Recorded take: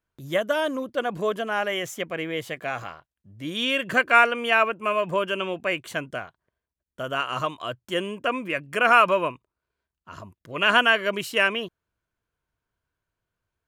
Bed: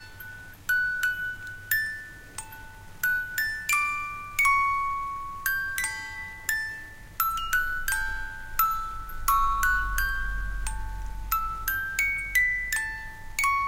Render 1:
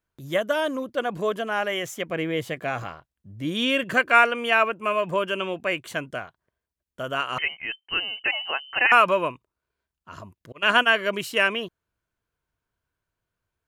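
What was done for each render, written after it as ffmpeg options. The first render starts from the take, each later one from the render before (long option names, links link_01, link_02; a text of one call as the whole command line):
ffmpeg -i in.wav -filter_complex "[0:a]asettb=1/sr,asplit=3[link_01][link_02][link_03];[link_01]atrim=end=2.094[link_04];[link_02]atrim=start=2.09:end=3.84,asetpts=PTS-STARTPTS,afade=type=in:duration=0.004:curve=qsin,afade=type=out:start_time=1.746:duration=0.004:curve=qsin,lowshelf=frequency=480:gain=6[link_05];[link_03]atrim=start=3.836[link_06];[link_04][link_05]acrossfade=duration=0.004:curve1=hsin:curve2=qsin[link_07];[link_07][link_06]acrossfade=duration=0.004:curve1=qsin:curve2=hsin,asettb=1/sr,asplit=3[link_08][link_09][link_10];[link_08]atrim=end=7.384[link_11];[link_09]atrim=start=7.38:end=8.92,asetpts=PTS-STARTPTS,afade=type=in:duration=0.004:curve=qsin,afade=type=out:start_time=1.536:duration=0.004:curve=qsin,lowpass=frequency=2700:width_type=q:width=0.5098,lowpass=frequency=2700:width_type=q:width=0.6013,lowpass=frequency=2700:width_type=q:width=0.9,lowpass=frequency=2700:width_type=q:width=2.563,afreqshift=-3200[link_12];[link_10]atrim=start=8.916[link_13];[link_11][link_12]acrossfade=duration=0.004:curve1=hsin:curve2=qsin[link_14];[link_14][link_13]acrossfade=duration=0.004:curve1=qsin:curve2=hsin,asettb=1/sr,asplit=3[link_15][link_16][link_17];[link_15]atrim=end=10.524[link_18];[link_16]atrim=start=10.52:end=10.94,asetpts=PTS-STARTPTS,afade=type=in:duration=0.004:curve=qsin,afade=type=out:start_time=0.416:duration=0.004:curve=qsin,agate=range=-33dB:threshold=-20dB:ratio=3:release=100:detection=peak[link_19];[link_17]atrim=start=10.936[link_20];[link_18][link_19]acrossfade=duration=0.004:curve1=hsin:curve2=qsin[link_21];[link_21][link_20]acrossfade=duration=0.004:curve1=qsin:curve2=hsin" out.wav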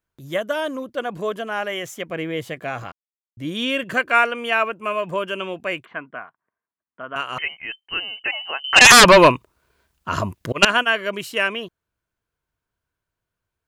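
ffmpeg -i in.wav -filter_complex "[0:a]asettb=1/sr,asplit=3[link_01][link_02][link_03];[link_01]atrim=end=5.854[link_04];[link_02]atrim=start=5.85:end=7.16,asetpts=PTS-STARTPTS,afade=type=in:duration=0.004:curve=qsin,afade=type=out:start_time=1.306:duration=0.004:curve=qsin,highpass=250,equalizer=frequency=370:width_type=q:width=4:gain=-6,equalizer=frequency=550:width_type=q:width=4:gain=-9,equalizer=frequency=1100:width_type=q:width=4:gain=5,lowpass=frequency=2200:width=0.5412,lowpass=frequency=2200:width=1.3066[link_05];[link_03]atrim=start=7.156[link_06];[link_04][link_05]acrossfade=duration=0.004:curve1=hsin:curve2=qsin[link_07];[link_07][link_06]acrossfade=duration=0.004:curve1=qsin:curve2=hsin,asettb=1/sr,asplit=3[link_08][link_09][link_10];[link_08]atrim=end=8.644[link_11];[link_09]atrim=start=8.64:end=10.65,asetpts=PTS-STARTPTS,afade=type=in:duration=0.004:curve=qsin,afade=type=out:start_time=2.006:duration=0.004:curve=qsin,aeval=exprs='0.596*sin(PI/2*5.01*val(0)/0.596)':channel_layout=same[link_12];[link_10]atrim=start=10.646[link_13];[link_11][link_12]acrossfade=duration=0.004:curve1=hsin:curve2=qsin[link_14];[link_14][link_13]acrossfade=duration=0.004:curve1=qsin:curve2=hsin,asplit=3[link_15][link_16][link_17];[link_15]atrim=end=2.92,asetpts=PTS-STARTPTS,afade=type=out:start_time=2.916:duration=0.004:curve=hsin[link_18];[link_16]atrim=start=2.92:end=3.37,asetpts=PTS-STARTPTS,volume=0[link_19];[link_17]atrim=start=3.37,asetpts=PTS-STARTPTS,afade=type=in:duration=0.004:curve=hsin[link_20];[link_18][link_19][link_20]concat=n=3:v=0:a=1" out.wav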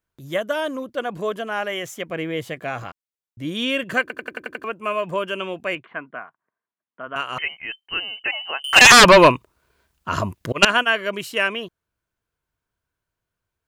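ffmpeg -i in.wav -filter_complex "[0:a]asettb=1/sr,asplit=3[link_01][link_02][link_03];[link_01]atrim=end=5.754[link_04];[link_02]atrim=start=5.75:end=7.07,asetpts=PTS-STARTPTS,afade=type=in:duration=0.004:curve=qsin,afade=type=out:start_time=1.316:duration=0.004:curve=qsin,highpass=110,lowpass=3200[link_05];[link_03]atrim=start=7.066[link_06];[link_04][link_05]acrossfade=duration=0.004:curve1=hsin:curve2=qsin[link_07];[link_07][link_06]acrossfade=duration=0.004:curve1=qsin:curve2=hsin,asettb=1/sr,asplit=3[link_08][link_09][link_10];[link_08]atrim=end=8.624[link_11];[link_09]atrim=start=8.62:end=9.05,asetpts=PTS-STARTPTS,afade=type=in:duration=0.004:curve=qsin,afade=type=out:start_time=0.426:duration=0.004:curve=qsin,adynamicsmooth=sensitivity=7:basefreq=1100[link_12];[link_10]atrim=start=9.046[link_13];[link_11][link_12]acrossfade=duration=0.004:curve1=hsin:curve2=qsin[link_14];[link_14][link_13]acrossfade=duration=0.004:curve1=qsin:curve2=hsin,asplit=8[link_15][link_16][link_17][link_18][link_19][link_20][link_21][link_22];[link_15]atrim=end=4.102[link_23];[link_16]atrim=start=4.008:end=4.102[link_24];[link_17]atrim=start=4.008:end=4.102[link_25];[link_18]atrim=start=4.008:end=4.102[link_26];[link_19]atrim=start=4.008:end=4.102[link_27];[link_20]atrim=start=4.008:end=4.102[link_28];[link_21]atrim=start=4.008:end=4.102[link_29];[link_22]atrim=start=4.638[link_30];[link_23][link_24]acrossfade=duration=0.004:curve1=hsin:curve2=hsin[link_31];[link_31][link_25]acrossfade=duration=0.004:curve1=hsin:curve2=hsin[link_32];[link_32][link_26]acrossfade=duration=0.004:curve1=hsin:curve2=hsin[link_33];[link_33][link_27]acrossfade=duration=0.004:curve1=hsin:curve2=hsin[link_34];[link_34][link_28]acrossfade=duration=0.004:curve1=hsin:curve2=hsin[link_35];[link_35][link_29]acrossfade=duration=0.004:curve1=hsin:curve2=hsin[link_36];[link_36][link_30]acrossfade=duration=0.004:curve1=hsin:curve2=hsin" out.wav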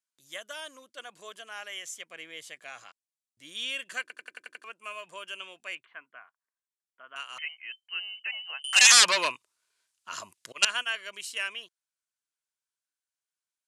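ffmpeg -i in.wav -af "lowpass=frequency=9500:width=0.5412,lowpass=frequency=9500:width=1.3066,aderivative" out.wav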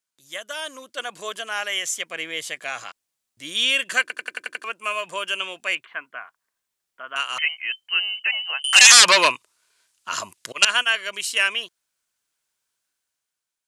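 ffmpeg -i in.wav -af "dynaudnorm=framelen=110:gausssize=13:maxgain=7.5dB,alimiter=level_in=6dB:limit=-1dB:release=50:level=0:latency=1" out.wav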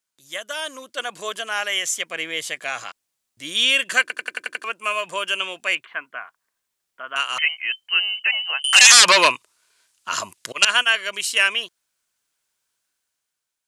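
ffmpeg -i in.wav -af "volume=2.5dB,alimiter=limit=-1dB:level=0:latency=1" out.wav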